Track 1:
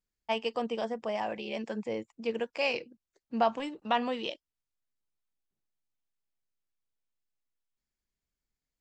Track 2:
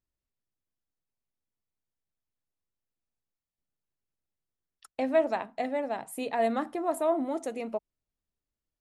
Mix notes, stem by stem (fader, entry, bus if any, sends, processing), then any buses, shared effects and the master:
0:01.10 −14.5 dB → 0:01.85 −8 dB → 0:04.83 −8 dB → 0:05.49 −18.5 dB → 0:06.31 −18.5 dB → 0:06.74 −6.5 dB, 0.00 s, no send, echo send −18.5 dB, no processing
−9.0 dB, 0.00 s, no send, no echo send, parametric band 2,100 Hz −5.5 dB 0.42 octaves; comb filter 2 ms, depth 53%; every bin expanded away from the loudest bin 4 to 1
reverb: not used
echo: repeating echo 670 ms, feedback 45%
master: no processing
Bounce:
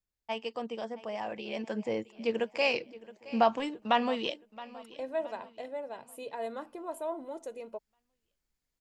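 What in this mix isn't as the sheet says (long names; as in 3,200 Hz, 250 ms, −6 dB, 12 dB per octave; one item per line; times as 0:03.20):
stem 1 −14.5 dB → −4.5 dB
stem 2: missing every bin expanded away from the loudest bin 4 to 1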